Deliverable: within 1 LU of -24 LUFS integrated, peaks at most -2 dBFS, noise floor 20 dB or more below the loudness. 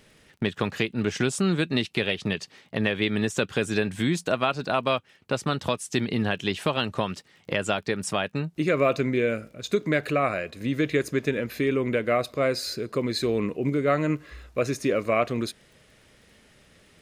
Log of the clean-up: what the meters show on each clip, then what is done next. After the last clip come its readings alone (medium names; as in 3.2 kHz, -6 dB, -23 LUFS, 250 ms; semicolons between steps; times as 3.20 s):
tick rate 24 per s; loudness -26.5 LUFS; peak level -8.0 dBFS; loudness target -24.0 LUFS
-> de-click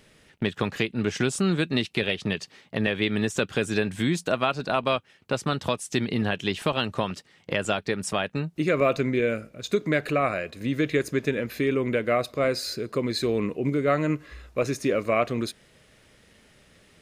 tick rate 0 per s; loudness -26.5 LUFS; peak level -8.0 dBFS; loudness target -24.0 LUFS
-> trim +2.5 dB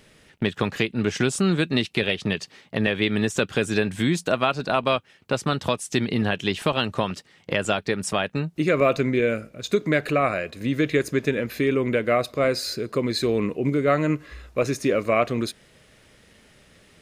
loudness -24.0 LUFS; peak level -5.5 dBFS; noise floor -56 dBFS